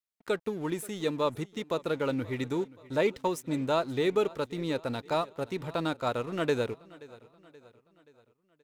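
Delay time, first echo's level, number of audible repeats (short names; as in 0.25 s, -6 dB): 0.528 s, -21.0 dB, 3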